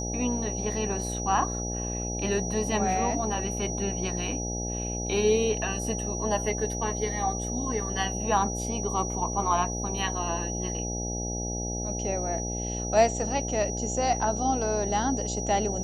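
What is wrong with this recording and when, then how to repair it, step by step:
buzz 60 Hz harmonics 14 -33 dBFS
tone 5800 Hz -34 dBFS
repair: notch 5800 Hz, Q 30; de-hum 60 Hz, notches 14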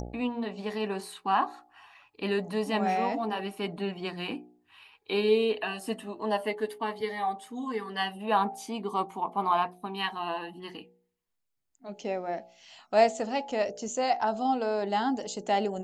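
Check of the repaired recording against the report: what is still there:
none

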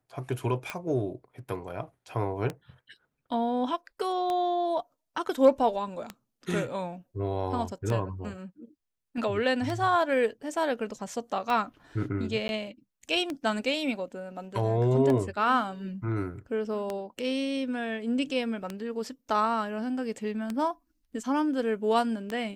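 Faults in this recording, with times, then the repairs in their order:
tick 33 1/3 rpm -18 dBFS
12.48–12.49 gap 11 ms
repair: de-click; interpolate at 12.48, 11 ms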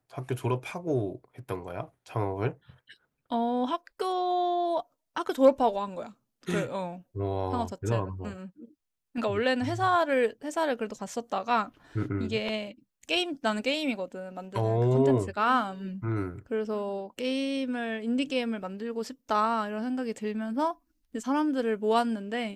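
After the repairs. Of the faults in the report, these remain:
none

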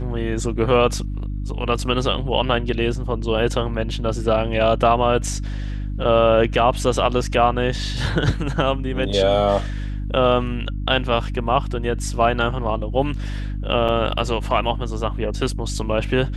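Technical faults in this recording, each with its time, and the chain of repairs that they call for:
hum 50 Hz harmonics 6 -26 dBFS
13.88–13.89 gap 6.3 ms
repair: de-hum 50 Hz, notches 6; interpolate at 13.88, 6.3 ms

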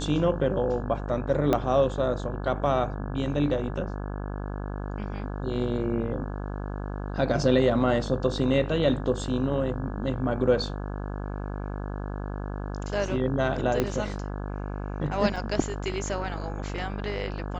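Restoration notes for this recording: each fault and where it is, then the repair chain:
buzz 50 Hz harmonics 34 -33 dBFS
1.53 pop -11 dBFS
13.8 pop -11 dBFS
15.36 gap 3.9 ms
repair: de-click; de-hum 50 Hz, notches 34; interpolate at 15.36, 3.9 ms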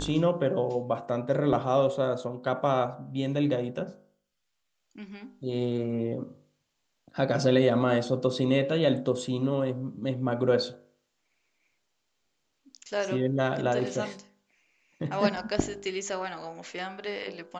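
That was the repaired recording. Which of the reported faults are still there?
1.53 pop
13.8 pop

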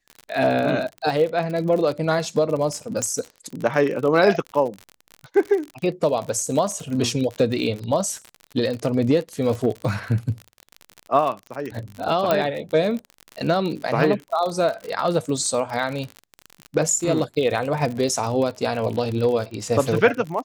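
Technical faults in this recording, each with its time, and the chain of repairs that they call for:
crackle 52/s -27 dBFS
3.02 pop -14 dBFS
12.31 pop -7 dBFS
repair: de-click

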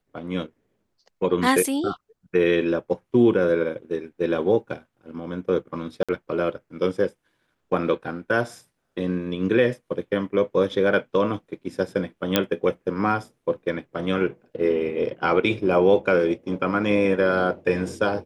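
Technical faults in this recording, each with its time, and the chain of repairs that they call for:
6.03–6.09 gap 56 ms
12.36 pop -3 dBFS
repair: de-click; interpolate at 6.03, 56 ms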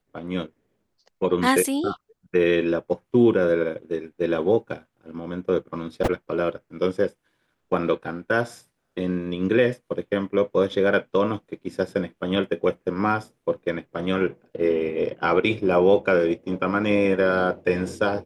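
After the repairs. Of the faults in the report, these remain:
none

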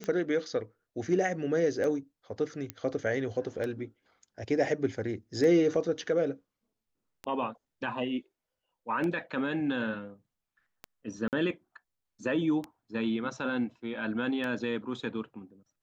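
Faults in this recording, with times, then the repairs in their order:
tick 33 1/3 rpm -22 dBFS
2.7 pop -19 dBFS
11.28–11.33 gap 48 ms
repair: de-click; interpolate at 11.28, 48 ms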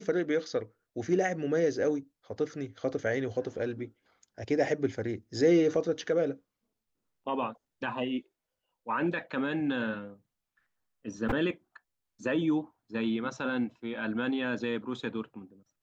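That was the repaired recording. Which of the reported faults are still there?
none

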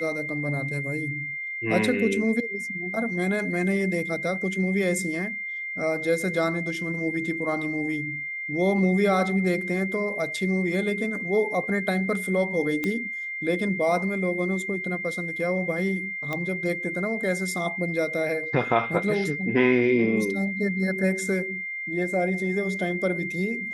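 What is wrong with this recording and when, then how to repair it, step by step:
tone 2100 Hz -30 dBFS
12.84 pop -14 dBFS
16.33 pop -16 dBFS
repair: de-click; notch 2100 Hz, Q 30

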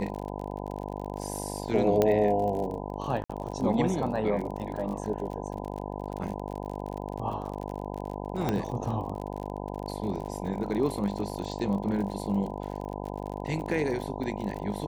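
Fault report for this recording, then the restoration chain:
buzz 50 Hz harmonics 20 -36 dBFS
crackle 42/s -35 dBFS
2.02 pop -11 dBFS
3.24–3.29 gap 55 ms
8.49 pop -14 dBFS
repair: de-click; de-hum 50 Hz, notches 20; interpolate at 3.24, 55 ms

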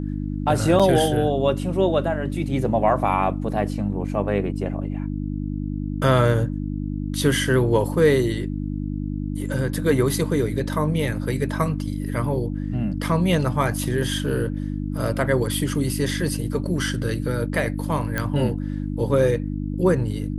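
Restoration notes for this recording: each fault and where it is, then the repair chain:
hum 50 Hz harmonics 6 -27 dBFS
0.79–0.8 gap 6.1 ms
18.18 pop -10 dBFS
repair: de-click; de-hum 50 Hz, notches 6; interpolate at 0.79, 6.1 ms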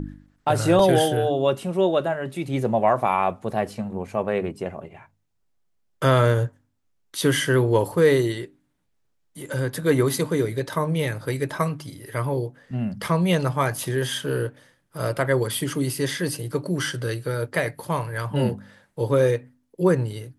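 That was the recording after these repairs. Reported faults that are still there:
none

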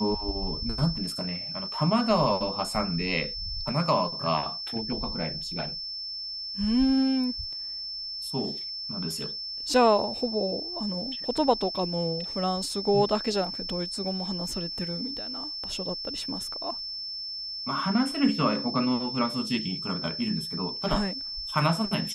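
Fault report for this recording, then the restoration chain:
tone 5300 Hz -33 dBFS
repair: notch 5300 Hz, Q 30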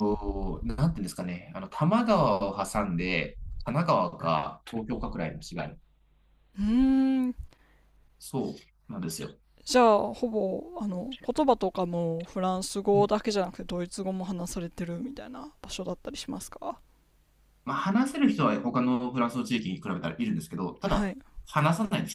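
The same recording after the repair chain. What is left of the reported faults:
none

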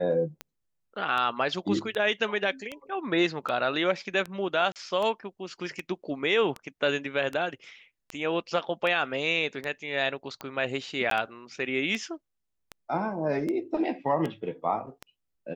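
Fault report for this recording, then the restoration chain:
tick 78 rpm -20 dBFS
4.72–4.76 gap 38 ms
11.1–11.11 gap 13 ms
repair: de-click; interpolate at 4.72, 38 ms; interpolate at 11.1, 13 ms

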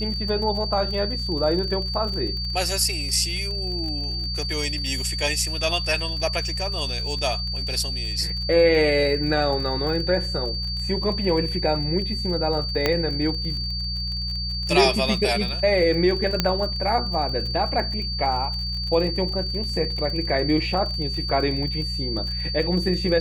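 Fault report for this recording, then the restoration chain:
crackle 37/s -30 dBFS
hum 60 Hz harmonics 3 -30 dBFS
tone 4600 Hz -28 dBFS
12.86 pop -6 dBFS
16.4 pop -5 dBFS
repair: de-click; de-hum 60 Hz, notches 3; notch 4600 Hz, Q 30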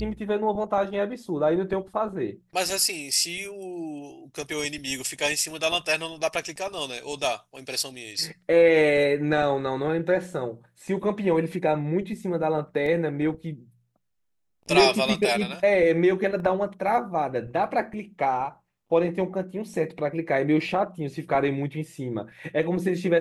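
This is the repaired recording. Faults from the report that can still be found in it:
12.86 pop
16.4 pop

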